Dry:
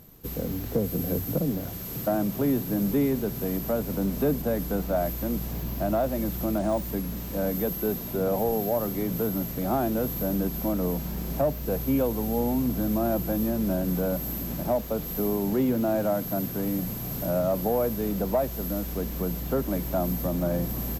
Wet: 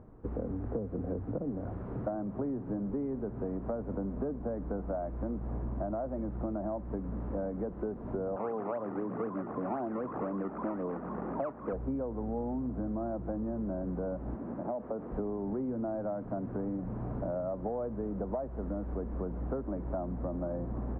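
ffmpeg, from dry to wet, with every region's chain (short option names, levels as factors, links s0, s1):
-filter_complex "[0:a]asettb=1/sr,asplit=3[s0][s1][s2];[s0]atrim=end=8.364[s3];[s1]atrim=start=8.36:end=11.73,asetpts=PTS-STARTPTS,afade=t=in:d=0.004:c=qsin,afade=t=out:st=3.366:d=0.004:c=qsin,acrusher=samples=19:mix=1:aa=0.000001:lfo=1:lforange=19:lforate=3.9,highpass=180,lowpass=2900[s4];[s2]atrim=start=11.726[s5];[s3][s4]acrossfade=d=0.004:c1=hsin:c2=qsin[s6];[s6][s5]acrossfade=d=0.004:c1=qsin:c2=hsin,asettb=1/sr,asplit=3[s7][s8][s9];[s7]atrim=end=14.354[s10];[s8]atrim=start=14.35:end=15.12,asetpts=PTS-STARTPTS,afade=t=in:d=0.004:c=qsin,afade=t=out:st=0.766:d=0.004:c=qsin,acompressor=threshold=0.0282:ratio=2.5:attack=3.2:release=140:knee=1:detection=peak,highpass=160,lowpass=2800[s11];[s9]atrim=start=15.116[s12];[s10][s11]acrossfade=d=0.004:c1=hsin:c2=qsin[s13];[s13][s12]acrossfade=d=0.004:c1=qsin:c2=hsin,lowpass=f=1300:w=0.5412,lowpass=f=1300:w=1.3066,equalizer=f=160:w=5.7:g=-12,acompressor=threshold=0.0224:ratio=10,volume=1.19"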